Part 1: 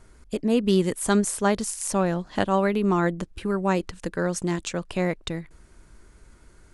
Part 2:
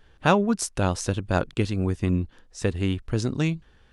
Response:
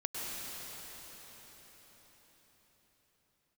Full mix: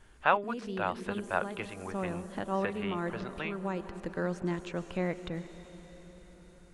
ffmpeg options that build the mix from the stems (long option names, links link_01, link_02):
-filter_complex "[0:a]alimiter=limit=-13dB:level=0:latency=1:release=230,volume=-8dB,asplit=2[link_01][link_02];[link_02]volume=-15dB[link_03];[1:a]acrossover=split=590 3900:gain=0.0794 1 0.0891[link_04][link_05][link_06];[link_04][link_05][link_06]amix=inputs=3:normalize=0,volume=-1.5dB,asplit=2[link_07][link_08];[link_08]apad=whole_len=297226[link_09];[link_01][link_09]sidechaincompress=threshold=-39dB:ratio=3:attack=30:release=939[link_10];[2:a]atrim=start_sample=2205[link_11];[link_03][link_11]afir=irnorm=-1:irlink=0[link_12];[link_10][link_07][link_12]amix=inputs=3:normalize=0,acrossover=split=3300[link_13][link_14];[link_14]acompressor=threshold=-58dB:ratio=4:attack=1:release=60[link_15];[link_13][link_15]amix=inputs=2:normalize=0"